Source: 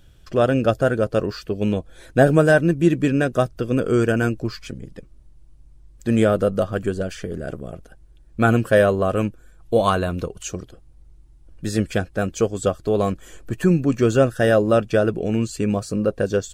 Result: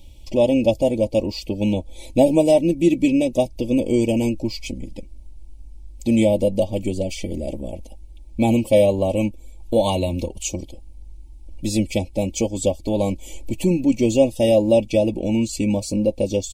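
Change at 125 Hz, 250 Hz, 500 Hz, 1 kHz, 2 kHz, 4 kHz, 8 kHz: -3.5, +2.0, +0.5, -5.0, -9.5, +3.5, +4.5 dB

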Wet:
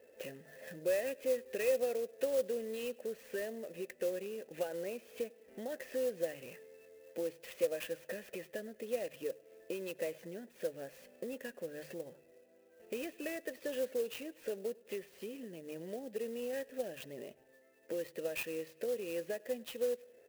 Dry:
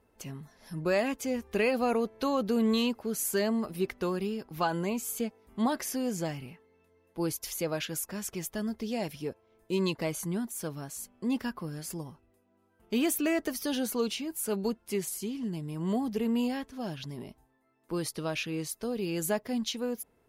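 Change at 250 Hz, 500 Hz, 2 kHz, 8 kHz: -16.0, -3.0, -8.0, -14.5 dB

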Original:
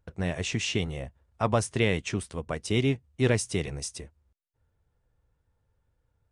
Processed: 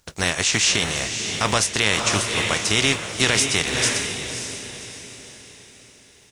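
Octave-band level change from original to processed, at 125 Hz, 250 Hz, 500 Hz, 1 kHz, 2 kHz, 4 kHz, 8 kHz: +0.5, +2.0, +2.5, +9.0, +13.0, +16.0, +16.5 dB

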